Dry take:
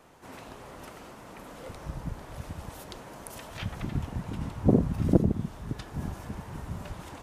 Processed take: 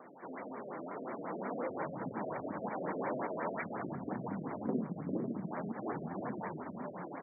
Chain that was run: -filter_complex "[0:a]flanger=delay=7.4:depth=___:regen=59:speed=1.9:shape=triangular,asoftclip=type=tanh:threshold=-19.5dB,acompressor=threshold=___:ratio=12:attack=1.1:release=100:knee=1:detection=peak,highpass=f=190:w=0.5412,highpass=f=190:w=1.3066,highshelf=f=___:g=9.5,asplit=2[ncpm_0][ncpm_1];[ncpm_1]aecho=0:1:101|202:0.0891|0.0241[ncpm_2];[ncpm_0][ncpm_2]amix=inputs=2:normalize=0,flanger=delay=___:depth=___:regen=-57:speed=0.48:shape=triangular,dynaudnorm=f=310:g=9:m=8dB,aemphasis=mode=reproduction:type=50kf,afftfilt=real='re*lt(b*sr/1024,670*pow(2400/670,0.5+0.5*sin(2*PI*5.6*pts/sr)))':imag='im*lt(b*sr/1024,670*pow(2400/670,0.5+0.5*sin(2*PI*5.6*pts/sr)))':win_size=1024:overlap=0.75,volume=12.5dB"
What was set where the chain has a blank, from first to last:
5.5, -45dB, 4200, 0.1, 7.9